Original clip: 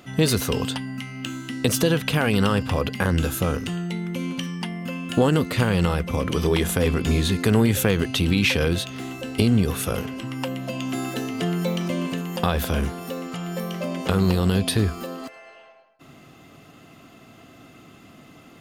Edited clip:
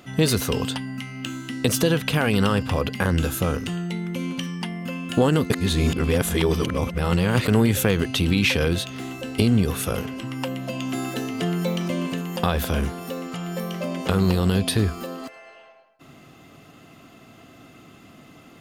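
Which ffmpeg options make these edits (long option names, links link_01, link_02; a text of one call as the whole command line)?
ffmpeg -i in.wav -filter_complex "[0:a]asplit=3[link_01][link_02][link_03];[link_01]atrim=end=5.502[link_04];[link_02]atrim=start=5.498:end=7.482,asetpts=PTS-STARTPTS,areverse[link_05];[link_03]atrim=start=7.478[link_06];[link_04][link_05]acrossfade=duration=0.004:curve1=hsin:curve2=hsin[link_07];[link_07][link_06]acrossfade=duration=0.004:curve1=hsin:curve2=hsin" out.wav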